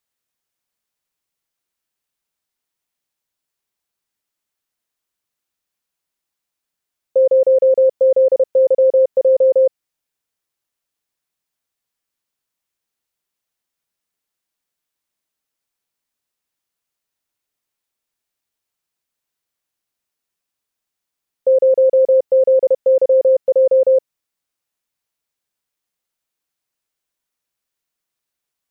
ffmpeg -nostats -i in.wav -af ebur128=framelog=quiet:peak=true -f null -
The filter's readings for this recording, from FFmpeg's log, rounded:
Integrated loudness:
  I:         -14.1 LUFS
  Threshold: -24.1 LUFS
Loudness range:
  LRA:         8.5 LU
  Threshold: -36.9 LUFS
  LRA low:   -22.8 LUFS
  LRA high:  -14.3 LUFS
True peak:
  Peak:       -8.0 dBFS